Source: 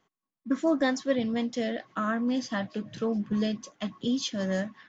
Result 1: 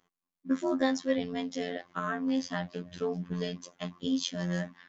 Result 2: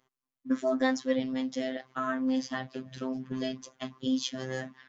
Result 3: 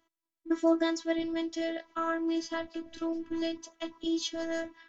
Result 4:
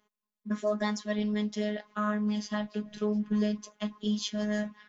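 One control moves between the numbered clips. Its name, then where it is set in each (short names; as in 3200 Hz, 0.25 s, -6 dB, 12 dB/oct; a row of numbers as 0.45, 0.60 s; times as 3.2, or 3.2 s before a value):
robotiser, frequency: 88, 130, 330, 210 Hz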